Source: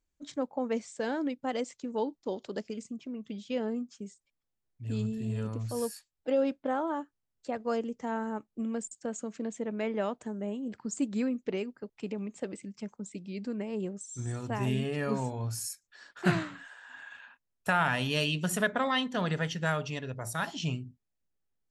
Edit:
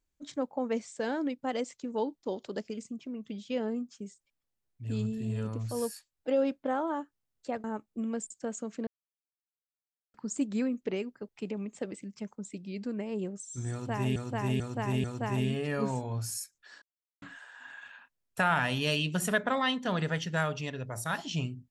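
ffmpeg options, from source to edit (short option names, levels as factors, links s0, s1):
-filter_complex "[0:a]asplit=9[s0][s1][s2][s3][s4][s5][s6][s7][s8];[s0]atrim=end=7.642[s9];[s1]atrim=start=8.248:end=9.48,asetpts=PTS-STARTPTS,afade=t=out:st=1.228:d=0.004:c=hsin[s10];[s2]atrim=start=9.48:end=10.75,asetpts=PTS-STARTPTS,volume=0[s11];[s3]atrim=start=10.75:end=14.772,asetpts=PTS-STARTPTS,afade=t=in:d=0.004:c=hsin[s12];[s4]atrim=start=14.328:end=14.772[s13];[s5]atrim=start=14.328:end=14.772[s14];[s6]atrim=start=14.328:end=16.11,asetpts=PTS-STARTPTS,afade=t=out:st=1.778:d=0.004:c=hsin[s15];[s7]atrim=start=16.11:end=16.51,asetpts=PTS-STARTPTS,volume=0[s16];[s8]atrim=start=16.51,asetpts=PTS-STARTPTS,afade=t=in:d=0.004:c=hsin[s17];[s10][s11][s12]concat=n=3:v=0:a=1[s18];[s9][s18]acrossfade=d=0.004:c1=hsin:c2=hsin[s19];[s19][s13]acrossfade=d=0.004:c1=hsin:c2=hsin[s20];[s20][s14]acrossfade=d=0.004:c1=hsin:c2=hsin[s21];[s15][s16][s17]concat=n=3:v=0:a=1[s22];[s21][s22]acrossfade=d=0.004:c1=hsin:c2=hsin"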